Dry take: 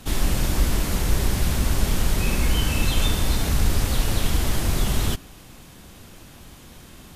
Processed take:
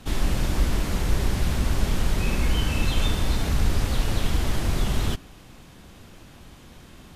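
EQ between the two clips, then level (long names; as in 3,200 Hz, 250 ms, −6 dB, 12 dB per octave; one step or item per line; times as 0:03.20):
high-shelf EQ 7,300 Hz −10 dB
−1.5 dB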